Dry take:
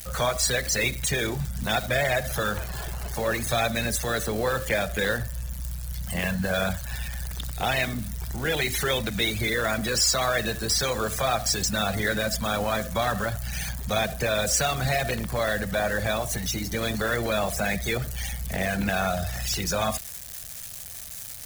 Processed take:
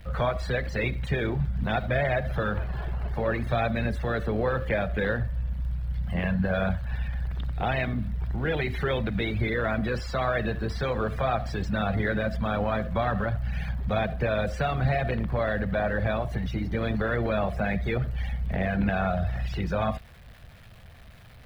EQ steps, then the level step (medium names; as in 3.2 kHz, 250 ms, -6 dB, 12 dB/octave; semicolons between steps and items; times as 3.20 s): distance through air 450 m; bass shelf 240 Hz +4 dB; 0.0 dB